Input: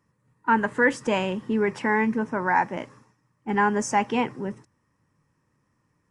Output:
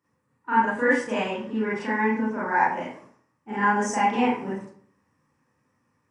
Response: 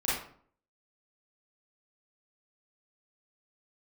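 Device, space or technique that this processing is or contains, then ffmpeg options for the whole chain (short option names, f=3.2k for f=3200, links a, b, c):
far laptop microphone: -filter_complex "[1:a]atrim=start_sample=2205[a];[0:a][a]afir=irnorm=-1:irlink=0,highpass=f=170:p=1,dynaudnorm=f=430:g=7:m=11.5dB,asettb=1/sr,asplit=3[b][c][d];[b]atrim=end=1.344[e];[c]atrim=start=1.34:end=2.38,asetpts=PTS-STARTPTS,afade=t=in:d=0.004:c=qsin,afade=t=out:st=1.036:d=0.004:c=qsin,lowpass=7.7k[f];[d]atrim=start=2.376[g];[e][f]acrossfade=d=0.004:c1=hsin:c2=qsin[h];[h][g]acrossfade=d=0.004:c1=qsin:c2=hsin,volume=-7dB"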